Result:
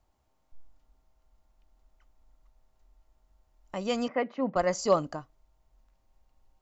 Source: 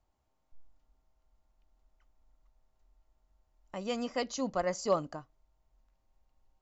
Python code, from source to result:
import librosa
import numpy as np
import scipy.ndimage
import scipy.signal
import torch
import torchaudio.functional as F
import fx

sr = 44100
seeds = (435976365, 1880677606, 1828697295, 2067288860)

y = fx.cheby1_bandpass(x, sr, low_hz=150.0, high_hz=2200.0, order=3, at=(4.08, 4.56))
y = F.gain(torch.from_numpy(y), 5.0).numpy()